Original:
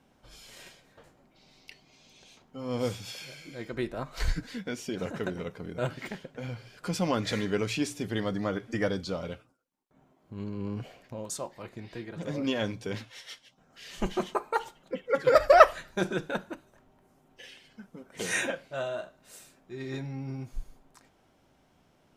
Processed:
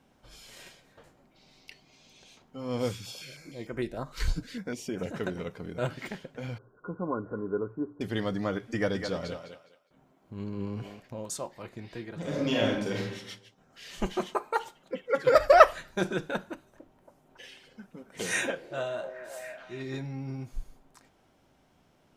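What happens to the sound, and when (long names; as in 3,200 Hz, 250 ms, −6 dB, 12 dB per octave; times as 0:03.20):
0:02.91–0:05.12: notch on a step sequencer 6.6 Hz 680–4,000 Hz
0:06.58–0:08.01: Chebyshev low-pass with heavy ripple 1,500 Hz, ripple 9 dB
0:08.74–0:11.00: feedback echo with a high-pass in the loop 206 ms, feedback 25%, high-pass 370 Hz, level −6 dB
0:12.19–0:13.13: thrown reverb, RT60 0.83 s, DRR −2.5 dB
0:14.05–0:15.26: low-shelf EQ 130 Hz −7 dB
0:16.52–0:19.83: echo through a band-pass that steps 277 ms, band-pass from 420 Hz, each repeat 0.7 octaves, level −6 dB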